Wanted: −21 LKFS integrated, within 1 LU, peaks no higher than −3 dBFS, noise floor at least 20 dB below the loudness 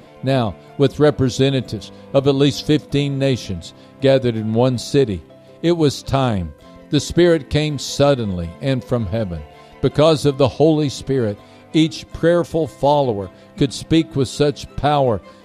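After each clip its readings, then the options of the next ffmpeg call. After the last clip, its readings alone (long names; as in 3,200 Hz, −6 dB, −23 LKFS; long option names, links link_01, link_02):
integrated loudness −18.0 LKFS; sample peak −2.0 dBFS; target loudness −21.0 LKFS
→ -af "volume=-3dB"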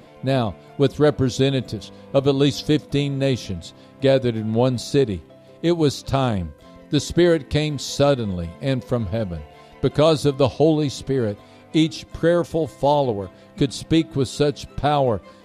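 integrated loudness −21.0 LKFS; sample peak −5.0 dBFS; background noise floor −47 dBFS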